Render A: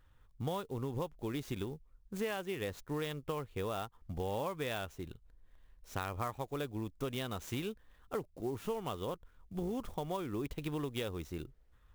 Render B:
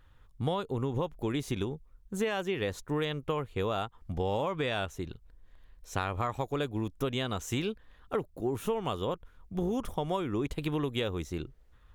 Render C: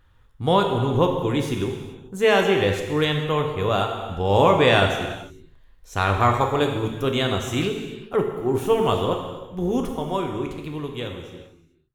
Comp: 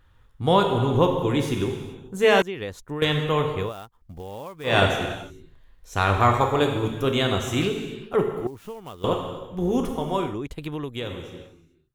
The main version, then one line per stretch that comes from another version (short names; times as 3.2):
C
2.42–3.02 from B
3.65–4.71 from A, crossfade 0.16 s
8.47–9.04 from A
10.32–11.03 from B, crossfade 0.16 s